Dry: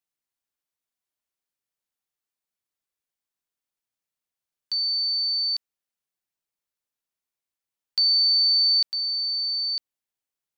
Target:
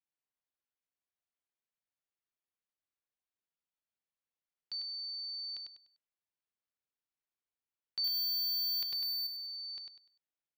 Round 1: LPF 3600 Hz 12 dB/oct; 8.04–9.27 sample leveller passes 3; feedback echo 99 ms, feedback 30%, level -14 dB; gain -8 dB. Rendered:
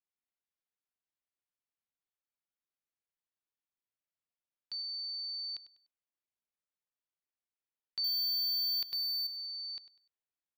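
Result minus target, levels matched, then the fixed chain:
echo-to-direct -10 dB
LPF 3600 Hz 12 dB/oct; 8.04–9.27 sample leveller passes 3; feedback echo 99 ms, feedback 30%, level -4 dB; gain -8 dB

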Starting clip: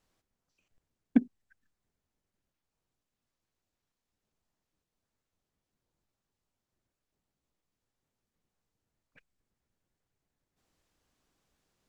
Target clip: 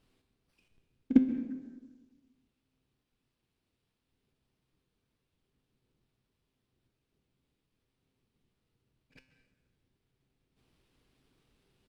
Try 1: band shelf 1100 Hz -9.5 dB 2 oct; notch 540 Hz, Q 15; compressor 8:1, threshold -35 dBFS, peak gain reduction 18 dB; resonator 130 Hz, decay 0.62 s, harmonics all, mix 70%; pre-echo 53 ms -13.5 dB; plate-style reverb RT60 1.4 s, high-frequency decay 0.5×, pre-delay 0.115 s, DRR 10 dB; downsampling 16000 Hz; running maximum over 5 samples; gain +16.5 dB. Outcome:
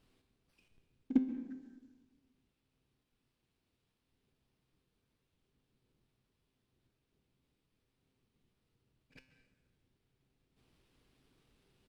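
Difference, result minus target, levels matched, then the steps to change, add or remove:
compressor: peak gain reduction +8.5 dB
change: compressor 8:1, threshold -25.5 dBFS, peak gain reduction 10 dB

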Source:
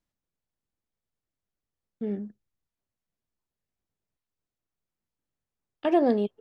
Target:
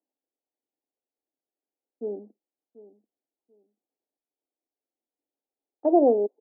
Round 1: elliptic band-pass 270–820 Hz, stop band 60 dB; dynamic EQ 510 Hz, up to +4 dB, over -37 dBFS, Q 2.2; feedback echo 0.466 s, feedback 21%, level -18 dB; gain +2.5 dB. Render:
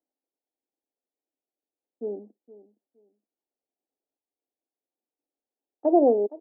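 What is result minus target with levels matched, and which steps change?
echo 0.271 s early
change: feedback echo 0.737 s, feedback 21%, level -18 dB

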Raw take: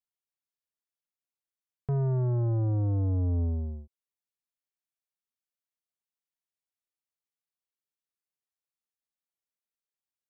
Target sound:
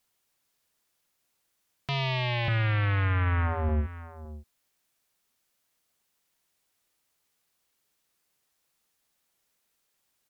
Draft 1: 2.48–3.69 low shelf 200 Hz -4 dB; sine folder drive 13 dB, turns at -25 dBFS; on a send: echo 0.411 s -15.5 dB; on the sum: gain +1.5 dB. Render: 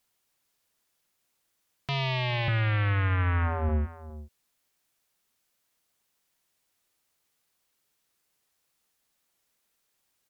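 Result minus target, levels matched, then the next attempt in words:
echo 0.153 s early
2.48–3.69 low shelf 200 Hz -4 dB; sine folder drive 13 dB, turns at -25 dBFS; on a send: echo 0.564 s -15.5 dB; on the sum: gain +1.5 dB

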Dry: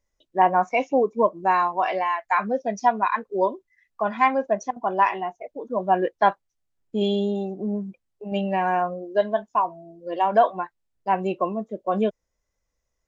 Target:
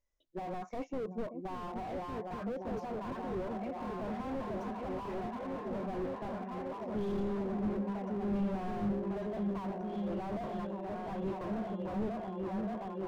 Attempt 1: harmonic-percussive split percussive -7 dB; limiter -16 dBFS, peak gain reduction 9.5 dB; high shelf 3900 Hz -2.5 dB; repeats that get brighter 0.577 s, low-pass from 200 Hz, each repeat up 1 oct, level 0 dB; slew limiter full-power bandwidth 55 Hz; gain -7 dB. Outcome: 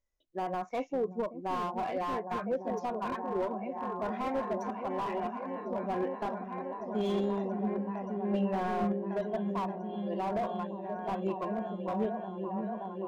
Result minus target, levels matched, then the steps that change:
slew limiter: distortion -11 dB
change: slew limiter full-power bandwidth 17.5 Hz

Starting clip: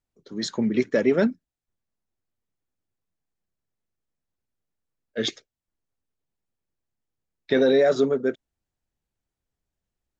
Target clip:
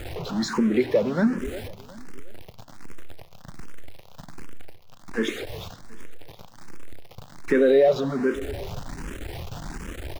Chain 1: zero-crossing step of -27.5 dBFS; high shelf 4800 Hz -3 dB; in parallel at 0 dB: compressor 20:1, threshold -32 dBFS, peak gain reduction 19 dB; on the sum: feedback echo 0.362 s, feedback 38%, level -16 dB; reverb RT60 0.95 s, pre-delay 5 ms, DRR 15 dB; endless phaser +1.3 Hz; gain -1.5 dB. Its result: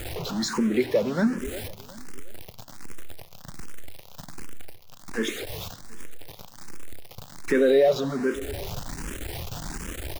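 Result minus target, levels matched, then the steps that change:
compressor: peak gain reduction +8.5 dB; 8000 Hz band +7.5 dB
change: high shelf 4800 Hz -14 dB; change: compressor 20:1, threshold -23 dBFS, peak gain reduction 10.5 dB

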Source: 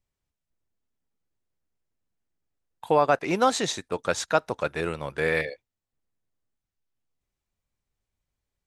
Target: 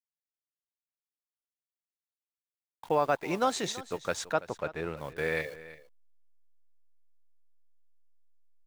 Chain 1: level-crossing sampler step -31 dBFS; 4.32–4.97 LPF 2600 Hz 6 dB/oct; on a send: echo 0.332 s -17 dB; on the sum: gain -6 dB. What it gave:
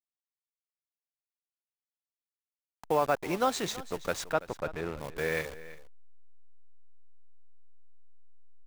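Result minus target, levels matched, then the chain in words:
level-crossing sampler: distortion +13 dB
level-crossing sampler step -42.5 dBFS; 4.32–4.97 LPF 2600 Hz 6 dB/oct; on a send: echo 0.332 s -17 dB; on the sum: gain -6 dB

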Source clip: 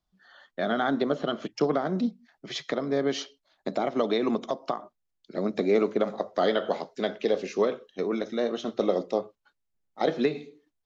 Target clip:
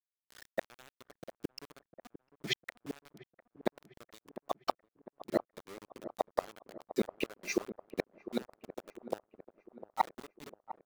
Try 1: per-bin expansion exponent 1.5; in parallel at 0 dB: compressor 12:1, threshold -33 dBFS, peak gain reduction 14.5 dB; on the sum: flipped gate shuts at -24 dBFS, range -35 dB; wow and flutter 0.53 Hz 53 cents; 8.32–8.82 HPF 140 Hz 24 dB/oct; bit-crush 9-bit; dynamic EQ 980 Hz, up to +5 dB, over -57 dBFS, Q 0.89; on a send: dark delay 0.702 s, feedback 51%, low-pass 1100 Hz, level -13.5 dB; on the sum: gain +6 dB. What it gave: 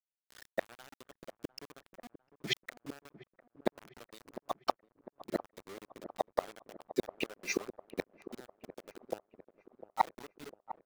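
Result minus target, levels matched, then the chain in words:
compressor: peak gain reduction -6 dB
per-bin expansion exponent 1.5; in parallel at 0 dB: compressor 12:1, threshold -39.5 dBFS, peak gain reduction 20.5 dB; on the sum: flipped gate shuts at -24 dBFS, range -35 dB; wow and flutter 0.53 Hz 53 cents; 8.32–8.82 HPF 140 Hz 24 dB/oct; bit-crush 9-bit; dynamic EQ 980 Hz, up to +5 dB, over -57 dBFS, Q 0.89; on a send: dark delay 0.702 s, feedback 51%, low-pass 1100 Hz, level -13.5 dB; on the sum: gain +6 dB

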